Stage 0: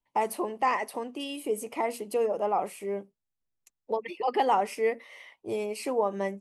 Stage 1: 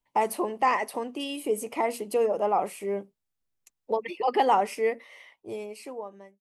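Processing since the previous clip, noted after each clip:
fade-out on the ending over 1.89 s
level +2.5 dB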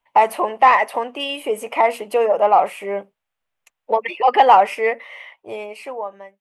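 flat-topped bell 1,300 Hz +12.5 dB 3 octaves
in parallel at −7.5 dB: soft clipping −9.5 dBFS, distortion −12 dB
on the sum: level −3 dB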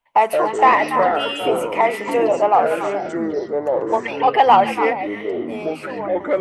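echo through a band-pass that steps 142 ms, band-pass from 3,600 Hz, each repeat −1.4 octaves, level −3 dB
delay with pitch and tempo change per echo 106 ms, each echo −6 semitones, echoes 3, each echo −6 dB
level −1 dB

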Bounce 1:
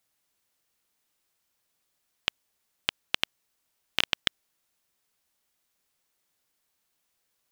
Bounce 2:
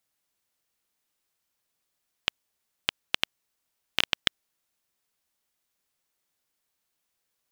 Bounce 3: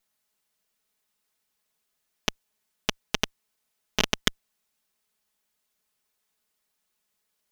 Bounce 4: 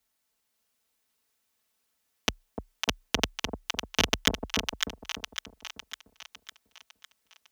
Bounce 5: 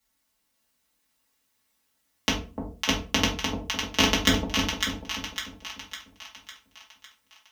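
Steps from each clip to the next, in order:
expander for the loud parts 1.5 to 1, over −33 dBFS; level +2 dB
lower of the sound and its delayed copy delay 4.7 ms; level +3.5 dB
echo with a time of its own for lows and highs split 830 Hz, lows 298 ms, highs 554 ms, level −4.5 dB; frequency shifter +29 Hz
rectangular room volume 220 cubic metres, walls furnished, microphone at 2.3 metres

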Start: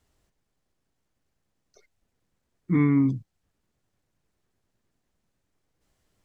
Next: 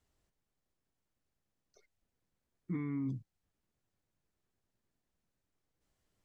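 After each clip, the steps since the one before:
brickwall limiter −21 dBFS, peak gain reduction 10 dB
level −8.5 dB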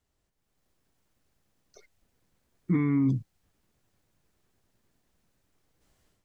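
automatic gain control gain up to 12 dB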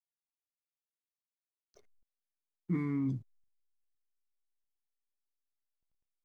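tuned comb filter 85 Hz, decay 0.31 s, harmonics all, mix 50%
slack as between gear wheels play −56.5 dBFS
level −3.5 dB

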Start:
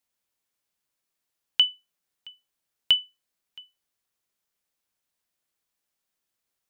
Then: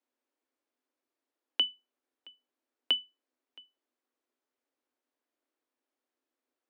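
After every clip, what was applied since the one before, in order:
Chebyshev high-pass filter 240 Hz, order 10
spectral tilt −4.5 dB per octave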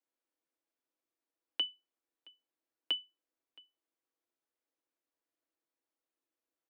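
comb filter 6.1 ms, depth 40%
level −6.5 dB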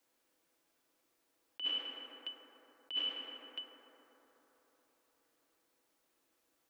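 convolution reverb RT60 4.4 s, pre-delay 3 ms, DRR 8 dB
compressor whose output falls as the input rises −44 dBFS, ratio −1
level +7.5 dB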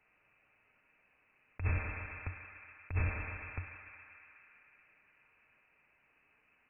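voice inversion scrambler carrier 2,900 Hz
level +10.5 dB

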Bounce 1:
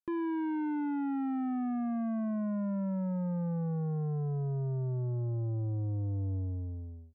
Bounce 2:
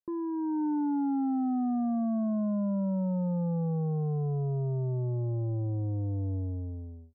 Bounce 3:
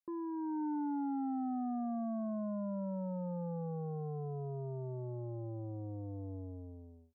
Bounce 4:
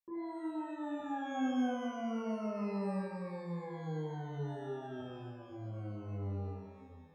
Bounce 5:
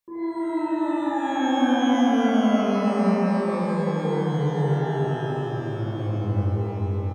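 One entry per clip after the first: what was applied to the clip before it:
low-pass filter 1,000 Hz 24 dB per octave; low-shelf EQ 93 Hz −7.5 dB; automatic gain control gain up to 5 dB
low-shelf EQ 230 Hz −12 dB; level −3 dB
sample-and-hold tremolo 2 Hz; reverb with rising layers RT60 1.1 s, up +12 semitones, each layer −8 dB, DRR −6.5 dB; level −6 dB
bouncing-ball delay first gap 290 ms, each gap 0.8×, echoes 5; four-comb reverb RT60 3.7 s, combs from 33 ms, DRR −6.5 dB; level +7.5 dB

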